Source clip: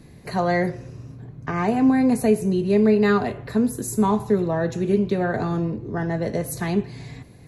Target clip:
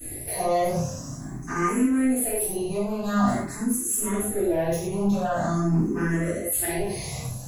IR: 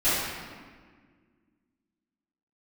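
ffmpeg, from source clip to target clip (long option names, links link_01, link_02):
-filter_complex "[0:a]aexciter=amount=12.9:drive=4.5:freq=6100,areverse,acompressor=threshold=-27dB:ratio=16,areverse,bandreject=frequency=60:width_type=h:width=6,bandreject=frequency=120:width_type=h:width=6,bandreject=frequency=180:width_type=h:width=6,bandreject=frequency=240:width_type=h:width=6,bandreject=frequency=300:width_type=h:width=6,bandreject=frequency=360:width_type=h:width=6,asoftclip=type=tanh:threshold=-28dB[link_01];[1:a]atrim=start_sample=2205,atrim=end_sample=6174[link_02];[link_01][link_02]afir=irnorm=-1:irlink=0,asplit=2[link_03][link_04];[link_04]afreqshift=0.46[link_05];[link_03][link_05]amix=inputs=2:normalize=1,volume=-2dB"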